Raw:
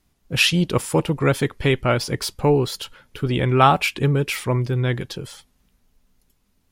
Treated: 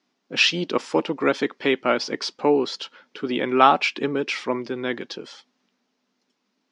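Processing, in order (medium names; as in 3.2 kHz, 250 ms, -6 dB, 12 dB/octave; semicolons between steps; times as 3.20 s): elliptic band-pass 240–5600 Hz, stop band 50 dB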